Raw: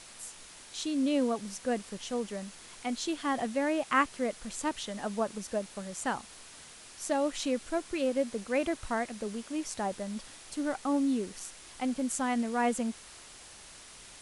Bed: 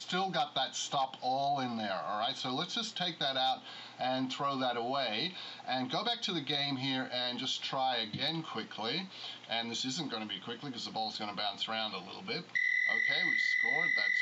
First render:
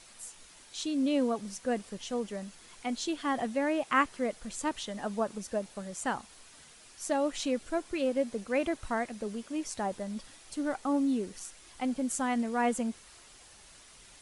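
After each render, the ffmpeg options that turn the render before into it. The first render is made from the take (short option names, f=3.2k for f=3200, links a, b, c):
-af "afftdn=nr=6:nf=-51"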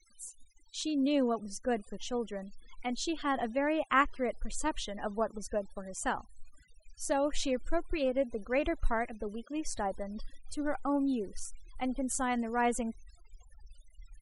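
-af "afftfilt=real='re*gte(hypot(re,im),0.00447)':imag='im*gte(hypot(re,im),0.00447)':win_size=1024:overlap=0.75,asubboost=boost=9:cutoff=51"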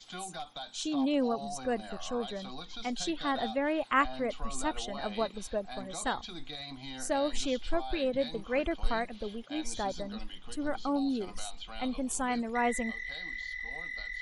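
-filter_complex "[1:a]volume=-9dB[a];[0:a][a]amix=inputs=2:normalize=0"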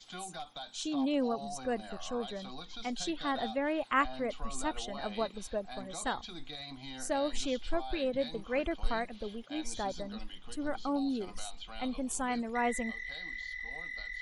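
-af "volume=-2dB"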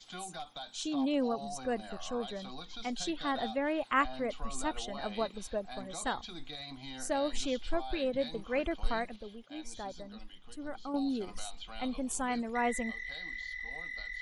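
-filter_complex "[0:a]asplit=3[a][b][c];[a]atrim=end=9.162[d];[b]atrim=start=9.158:end=10.942,asetpts=PTS-STARTPTS,volume=-6dB[e];[c]atrim=start=10.938[f];[d][e]acrossfade=d=0.004:c1=hsin:c2=hsin[g];[g][f]acrossfade=d=0.004:c1=hsin:c2=hsin"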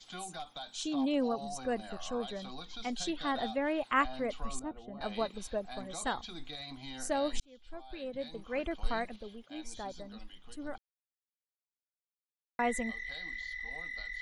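-filter_complex "[0:a]asettb=1/sr,asplit=3[a][b][c];[a]atrim=end=4.594[d];[b]atrim=start=4.59:end=5.01,asetpts=PTS-STARTPTS,afade=t=in:d=0.004:c=qsin,afade=t=out:st=0.416:d=0.004:c=qsin,bandpass=f=150:t=q:w=0.51[e];[c]atrim=start=5.006[f];[d][e]acrossfade=d=0.004:c1=hsin:c2=qsin[g];[g][f]acrossfade=d=0.004:c1=qsin:c2=hsin,asplit=4[h][i][j][k];[h]atrim=end=7.4,asetpts=PTS-STARTPTS,afade=t=out:st=7.396:d=0.004:c=hsin[l];[i]atrim=start=7.4:end=10.78,asetpts=PTS-STARTPTS,afade=t=in:d=1.67,afade=t=out:st=3.376:d=0.004:c=hsin[m];[j]atrim=start=10.78:end=12.59,asetpts=PTS-STARTPTS,volume=0[n];[k]atrim=start=12.59,asetpts=PTS-STARTPTS,afade=t=in:d=0.004:c=hsin[o];[l][m][n][o]concat=n=4:v=0:a=1"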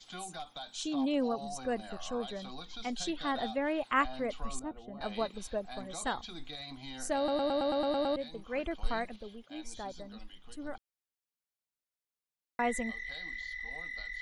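-filter_complex "[0:a]asplit=10[a][b][c][d][e][f][g][h][i][j];[a]atrim=end=7.282[k];[b]atrim=start=7.168:end=7.282[l];[c]atrim=start=7.168:end=7.282[m];[d]atrim=start=7.168:end=7.282[n];[e]atrim=start=7.168:end=7.282[o];[f]atrim=start=7.168:end=7.282[p];[g]atrim=start=7.168:end=7.282[q];[h]atrim=start=7.168:end=7.282[r];[i]atrim=start=7.168:end=7.282[s];[j]atrim=start=8.158[t];[k][l]acrossfade=d=0.004:c1=hsin:c2=hsin[u];[u][m]acrossfade=d=0.004:c1=hsin:c2=hsin[v];[v][n]acrossfade=d=0.004:c1=hsin:c2=hsin[w];[w][o]acrossfade=d=0.004:c1=hsin:c2=hsin[x];[x][p]acrossfade=d=0.004:c1=hsin:c2=hsin[y];[y][q]acrossfade=d=0.004:c1=hsin:c2=hsin[z];[z][r]acrossfade=d=0.004:c1=hsin:c2=hsin[aa];[aa][s]acrossfade=d=0.004:c1=hsin:c2=hsin[ab];[ab][t]acrossfade=d=0.004:c1=hsin:c2=hsin"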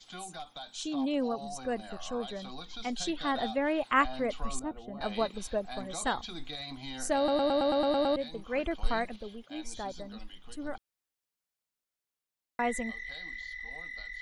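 -af "dynaudnorm=f=520:g=11:m=3.5dB"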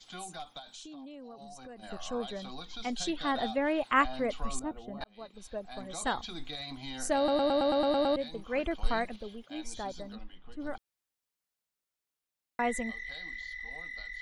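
-filter_complex "[0:a]asettb=1/sr,asplit=3[a][b][c];[a]atrim=end=0.594[d];[b]atrim=start=0.59:end=1.83,asetpts=PTS-STARTPTS,afade=t=in:d=0.004:c=qsin,afade=t=out:st=1.236:d=0.004:c=qsin,acompressor=threshold=-44dB:ratio=8:attack=3.2:release=140:knee=1:detection=peak[e];[c]atrim=start=1.826[f];[d][e]acrossfade=d=0.004:c1=hsin:c2=qsin[g];[g][f]acrossfade=d=0.004:c1=qsin:c2=hsin,asplit=3[h][i][j];[h]afade=t=out:st=10.15:d=0.02[k];[i]adynamicsmooth=sensitivity=4:basefreq=2.5k,afade=t=in:st=10.15:d=0.02,afade=t=out:st=10.59:d=0.02[l];[j]afade=t=in:st=10.59:d=0.02[m];[k][l][m]amix=inputs=3:normalize=0,asplit=2[n][o];[n]atrim=end=5.04,asetpts=PTS-STARTPTS,afade=t=out:st=5.036:d=0.004:c=hsin[p];[o]atrim=start=5.04,asetpts=PTS-STARTPTS,afade=t=in:d=1.16[q];[p][q]concat=n=2:v=0:a=1"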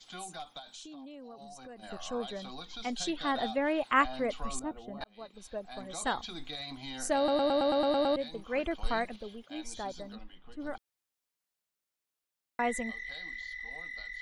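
-af "lowshelf=f=150:g=-4"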